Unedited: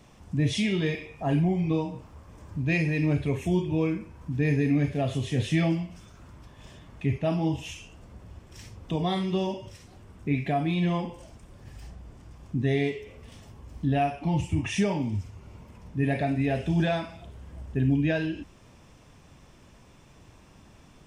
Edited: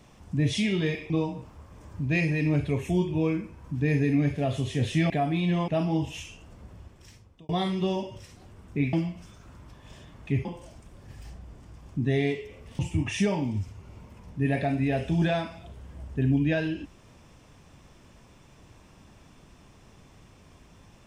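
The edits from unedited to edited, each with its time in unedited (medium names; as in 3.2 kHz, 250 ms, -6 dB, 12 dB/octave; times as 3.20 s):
1.10–1.67 s: delete
5.67–7.19 s: swap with 10.44–11.02 s
8.23–9.00 s: fade out linear
13.36–14.37 s: delete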